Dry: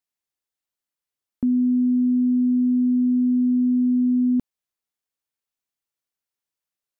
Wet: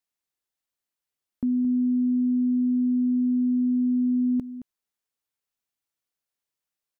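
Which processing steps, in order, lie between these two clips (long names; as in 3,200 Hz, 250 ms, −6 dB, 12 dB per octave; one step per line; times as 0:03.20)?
brickwall limiter −20 dBFS, peak gain reduction 4 dB
on a send: single-tap delay 220 ms −13 dB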